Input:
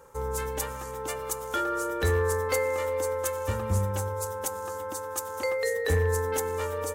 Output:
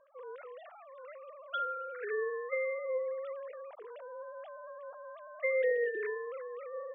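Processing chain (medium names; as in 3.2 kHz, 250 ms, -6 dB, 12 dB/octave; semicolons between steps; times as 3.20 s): formants replaced by sine waves; trim -8.5 dB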